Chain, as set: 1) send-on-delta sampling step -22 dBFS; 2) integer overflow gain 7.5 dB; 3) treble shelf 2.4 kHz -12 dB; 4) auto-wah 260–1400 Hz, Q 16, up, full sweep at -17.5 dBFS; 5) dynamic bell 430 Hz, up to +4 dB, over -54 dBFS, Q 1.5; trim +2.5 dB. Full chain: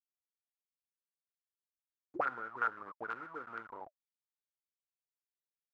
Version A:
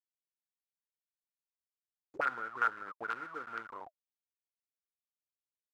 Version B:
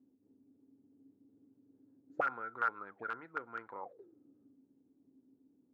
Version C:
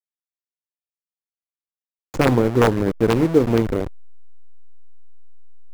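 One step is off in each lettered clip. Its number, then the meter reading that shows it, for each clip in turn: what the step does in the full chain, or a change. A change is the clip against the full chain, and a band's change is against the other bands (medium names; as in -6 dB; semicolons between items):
3, 2 kHz band +4.5 dB; 1, distortion -6 dB; 4, 125 Hz band +23.5 dB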